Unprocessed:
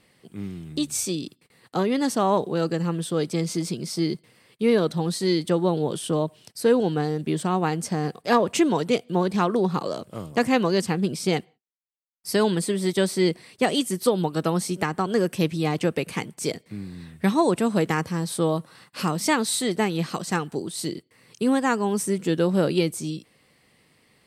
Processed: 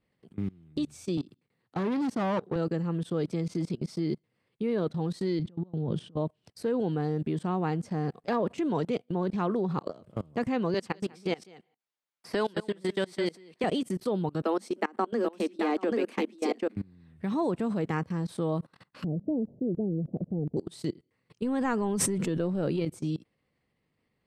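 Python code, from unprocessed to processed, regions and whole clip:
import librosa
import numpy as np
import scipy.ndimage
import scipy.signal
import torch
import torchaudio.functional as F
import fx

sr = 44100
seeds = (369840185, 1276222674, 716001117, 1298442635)

y = fx.chain(x, sr, fx.low_shelf(hz=200.0, db=2.5),
    fx.clip_hard(threshold_db=-25.0),
    fx.highpass(hz=97.0, slope=24), at=(1.17, 2.56))
y = fx.chain(y, sr, fx.bass_treble(bass_db=13, treble_db=-1),
    fx.over_compress(threshold_db=-24.0, ratio=-0.5),
    fx.bandpass_edges(low_hz=100.0, high_hz=5600.0), at=(5.39, 6.17))
y = fx.chain(y, sr, fx.highpass(hz=670.0, slope=6),
    fx.echo_single(ms=198, db=-7.0),
    fx.band_squash(depth_pct=70), at=(10.74, 13.64))
y = fx.chain(y, sr, fx.steep_highpass(hz=210.0, slope=96),
    fx.echo_single(ms=785, db=-4.0), at=(14.42, 16.76))
y = fx.chain(y, sr, fx.steep_lowpass(hz=630.0, slope=48),
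    fx.low_shelf(hz=290.0, db=5.5), at=(19.04, 20.57))
y = fx.chain(y, sr, fx.transient(attack_db=11, sustain_db=-1),
    fx.env_flatten(amount_pct=100), at=(21.42, 22.85))
y = fx.riaa(y, sr, side='playback')
y = fx.level_steps(y, sr, step_db=24)
y = fx.low_shelf(y, sr, hz=220.0, db=-10.0)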